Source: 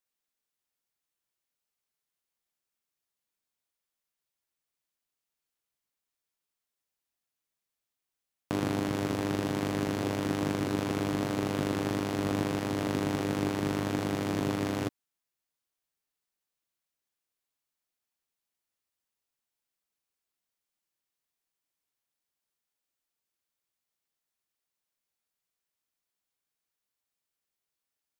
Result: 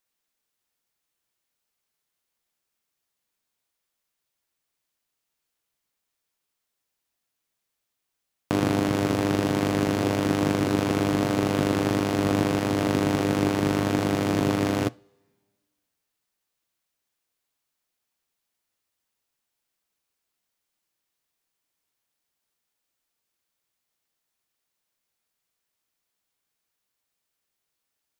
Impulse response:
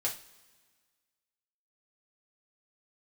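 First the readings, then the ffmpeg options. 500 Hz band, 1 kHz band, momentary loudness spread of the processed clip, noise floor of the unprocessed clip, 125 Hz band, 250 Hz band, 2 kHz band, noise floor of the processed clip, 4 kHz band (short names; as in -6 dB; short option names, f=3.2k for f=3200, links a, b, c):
+7.0 dB, +7.0 dB, 1 LU, under -85 dBFS, +6.5 dB, +7.0 dB, +6.5 dB, -82 dBFS, +6.5 dB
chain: -filter_complex "[0:a]asplit=2[a][b];[1:a]atrim=start_sample=2205,lowpass=7.7k[c];[b][c]afir=irnorm=-1:irlink=0,volume=-19.5dB[d];[a][d]amix=inputs=2:normalize=0,volume=6dB"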